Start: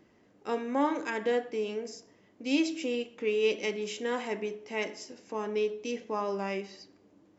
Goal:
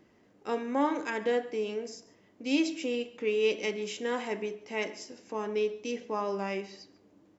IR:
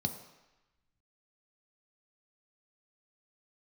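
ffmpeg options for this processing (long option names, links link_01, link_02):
-af "aecho=1:1:141:0.0841"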